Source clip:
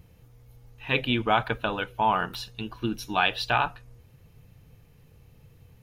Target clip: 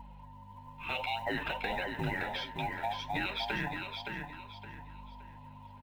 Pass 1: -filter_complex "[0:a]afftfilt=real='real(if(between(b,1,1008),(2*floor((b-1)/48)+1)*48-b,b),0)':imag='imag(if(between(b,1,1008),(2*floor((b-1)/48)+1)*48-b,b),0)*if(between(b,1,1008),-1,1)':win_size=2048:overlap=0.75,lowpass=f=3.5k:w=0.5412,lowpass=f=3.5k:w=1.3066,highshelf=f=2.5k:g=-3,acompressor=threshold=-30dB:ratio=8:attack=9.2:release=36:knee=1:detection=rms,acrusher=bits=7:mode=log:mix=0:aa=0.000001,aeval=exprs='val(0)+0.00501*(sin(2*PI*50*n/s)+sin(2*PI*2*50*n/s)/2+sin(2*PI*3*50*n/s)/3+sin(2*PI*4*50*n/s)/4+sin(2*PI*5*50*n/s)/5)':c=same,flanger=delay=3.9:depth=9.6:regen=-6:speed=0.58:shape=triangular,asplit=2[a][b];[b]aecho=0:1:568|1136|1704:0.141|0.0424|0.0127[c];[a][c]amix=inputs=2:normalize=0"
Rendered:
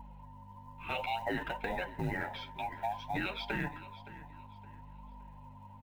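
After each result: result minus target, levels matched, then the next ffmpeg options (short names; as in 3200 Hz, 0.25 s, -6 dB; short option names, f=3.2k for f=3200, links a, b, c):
echo-to-direct -11.5 dB; 4000 Hz band -4.5 dB
-filter_complex "[0:a]afftfilt=real='real(if(between(b,1,1008),(2*floor((b-1)/48)+1)*48-b,b),0)':imag='imag(if(between(b,1,1008),(2*floor((b-1)/48)+1)*48-b,b),0)*if(between(b,1,1008),-1,1)':win_size=2048:overlap=0.75,lowpass=f=3.5k:w=0.5412,lowpass=f=3.5k:w=1.3066,highshelf=f=2.5k:g=-3,acompressor=threshold=-30dB:ratio=8:attack=9.2:release=36:knee=1:detection=rms,acrusher=bits=7:mode=log:mix=0:aa=0.000001,aeval=exprs='val(0)+0.00501*(sin(2*PI*50*n/s)+sin(2*PI*2*50*n/s)/2+sin(2*PI*3*50*n/s)/3+sin(2*PI*4*50*n/s)/4+sin(2*PI*5*50*n/s)/5)':c=same,flanger=delay=3.9:depth=9.6:regen=-6:speed=0.58:shape=triangular,asplit=2[a][b];[b]aecho=0:1:568|1136|1704|2272:0.531|0.159|0.0478|0.0143[c];[a][c]amix=inputs=2:normalize=0"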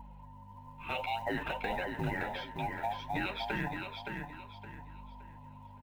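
4000 Hz band -3.5 dB
-filter_complex "[0:a]afftfilt=real='real(if(between(b,1,1008),(2*floor((b-1)/48)+1)*48-b,b),0)':imag='imag(if(between(b,1,1008),(2*floor((b-1)/48)+1)*48-b,b),0)*if(between(b,1,1008),-1,1)':win_size=2048:overlap=0.75,lowpass=f=3.5k:w=0.5412,lowpass=f=3.5k:w=1.3066,highshelf=f=2.5k:g=7,acompressor=threshold=-30dB:ratio=8:attack=9.2:release=36:knee=1:detection=rms,acrusher=bits=7:mode=log:mix=0:aa=0.000001,aeval=exprs='val(0)+0.00501*(sin(2*PI*50*n/s)+sin(2*PI*2*50*n/s)/2+sin(2*PI*3*50*n/s)/3+sin(2*PI*4*50*n/s)/4+sin(2*PI*5*50*n/s)/5)':c=same,flanger=delay=3.9:depth=9.6:regen=-6:speed=0.58:shape=triangular,asplit=2[a][b];[b]aecho=0:1:568|1136|1704|2272:0.531|0.159|0.0478|0.0143[c];[a][c]amix=inputs=2:normalize=0"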